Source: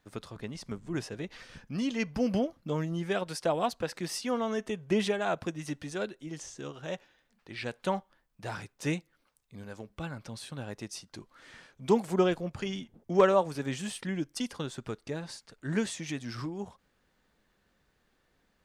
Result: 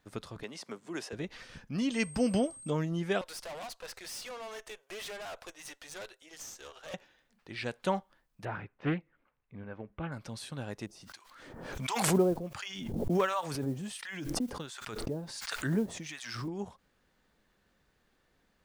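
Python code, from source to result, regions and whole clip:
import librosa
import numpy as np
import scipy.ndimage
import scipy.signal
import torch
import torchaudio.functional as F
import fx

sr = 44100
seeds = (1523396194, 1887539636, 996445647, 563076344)

y = fx.chain(x, sr, fx.highpass(hz=360.0, slope=12),
    fx.band_squash(depth_pct=40), at=(0.43, 1.13))
y = fx.peak_eq(y, sr, hz=5200.0, db=3.5, octaves=2.2, at=(1.91, 2.69), fade=0.02)
y = fx.dmg_tone(y, sr, hz=8400.0, level_db=-47.0, at=(1.91, 2.69), fade=0.02)
y = fx.chain(y, sr, fx.highpass(hz=500.0, slope=24),
    fx.high_shelf(hz=2900.0, db=6.0),
    fx.tube_stage(drive_db=40.0, bias=0.65), at=(3.21, 6.94))
y = fx.chain(y, sr, fx.lowpass(hz=2500.0, slope=24),
    fx.doppler_dist(depth_ms=0.31), at=(8.45, 10.12))
y = fx.chain(y, sr, fx.harmonic_tremolo(hz=1.4, depth_pct=100, crossover_hz=880.0),
    fx.mod_noise(seeds[0], snr_db=30),
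    fx.pre_swell(db_per_s=39.0), at=(10.86, 16.48))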